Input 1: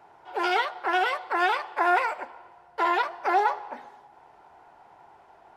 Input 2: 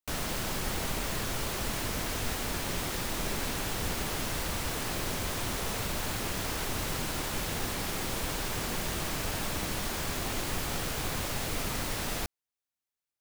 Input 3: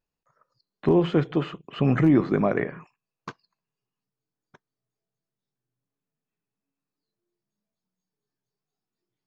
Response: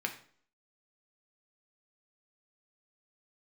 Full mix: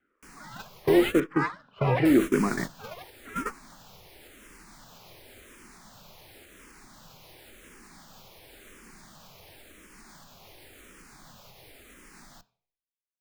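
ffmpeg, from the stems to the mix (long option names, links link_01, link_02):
-filter_complex "[0:a]highpass=390,aeval=exprs='val(0)*sin(2*PI*410*n/s+410*0.5/1.8*sin(2*PI*1.8*n/s))':channel_layout=same,volume=-1dB,asplit=2[link_01][link_02];[link_02]volume=-20.5dB[link_03];[1:a]alimiter=level_in=3dB:limit=-24dB:level=0:latency=1:release=299,volume=-3dB,adelay=150,volume=2dB,asplit=3[link_04][link_05][link_06];[link_04]atrim=end=1.2,asetpts=PTS-STARTPTS,afade=type=out:start_time=1.196:duration=0.004:curve=hsin[link_07];[link_05]atrim=start=1.2:end=2.05,asetpts=PTS-STARTPTS,volume=0[link_08];[link_06]atrim=start=2.05,asetpts=PTS-STARTPTS,afade=type=in:duration=0.004:curve=hsin[link_09];[link_07][link_08][link_09]concat=n=3:v=0:a=1,asplit=2[link_10][link_11];[link_11]volume=-8.5dB[link_12];[2:a]volume=-1.5dB,asplit=2[link_13][link_14];[link_14]volume=-11dB[link_15];[3:a]atrim=start_sample=2205[link_16];[link_03][link_12][link_15]amix=inputs=3:normalize=0[link_17];[link_17][link_16]afir=irnorm=-1:irlink=0[link_18];[link_01][link_10][link_13][link_18]amix=inputs=4:normalize=0,equalizer=frequency=70:width_type=o:width=0.77:gain=-5,agate=range=-15dB:threshold=-23dB:ratio=16:detection=peak,asplit=2[link_19][link_20];[link_20]afreqshift=-0.93[link_21];[link_19][link_21]amix=inputs=2:normalize=1"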